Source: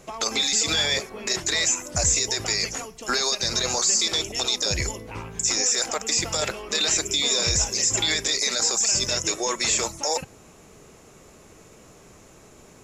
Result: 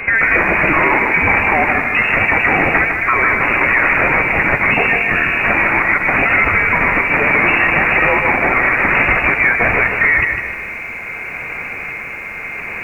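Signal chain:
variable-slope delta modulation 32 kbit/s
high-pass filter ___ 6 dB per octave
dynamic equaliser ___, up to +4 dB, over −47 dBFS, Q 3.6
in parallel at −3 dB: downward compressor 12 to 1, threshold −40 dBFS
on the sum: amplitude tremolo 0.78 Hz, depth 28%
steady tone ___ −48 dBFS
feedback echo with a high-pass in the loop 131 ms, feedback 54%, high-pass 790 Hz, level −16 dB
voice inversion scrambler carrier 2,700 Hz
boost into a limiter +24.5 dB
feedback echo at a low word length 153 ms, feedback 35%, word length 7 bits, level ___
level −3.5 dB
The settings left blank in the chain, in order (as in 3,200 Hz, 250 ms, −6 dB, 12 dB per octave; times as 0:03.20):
260 Hz, 800 Hz, 580 Hz, −6 dB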